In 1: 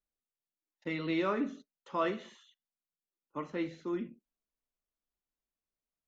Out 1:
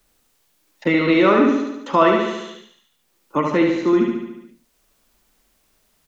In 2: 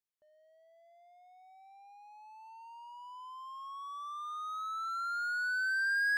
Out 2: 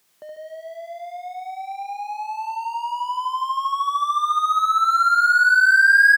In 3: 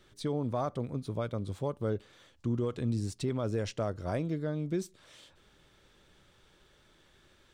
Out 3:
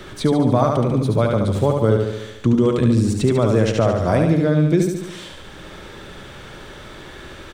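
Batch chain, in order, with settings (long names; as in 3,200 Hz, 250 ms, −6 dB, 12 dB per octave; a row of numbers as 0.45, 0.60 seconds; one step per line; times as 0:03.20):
dynamic equaliser 4,900 Hz, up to −4 dB, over −58 dBFS, Q 2.3
on a send: repeating echo 72 ms, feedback 54%, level −4 dB
on the sum: multiband upward and downward compressor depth 40%
loudness normalisation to −18 LKFS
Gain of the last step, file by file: +17.0, +17.5, +15.0 decibels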